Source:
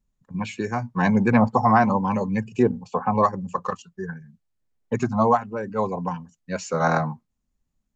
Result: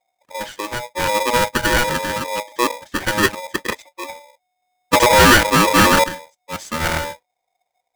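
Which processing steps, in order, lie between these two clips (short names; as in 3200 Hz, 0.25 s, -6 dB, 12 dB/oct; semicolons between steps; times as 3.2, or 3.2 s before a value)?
2.76–4.04 bell 1900 Hz +12.5 dB 0.99 oct; 4.93–6.04 sample leveller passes 5; polarity switched at an audio rate 730 Hz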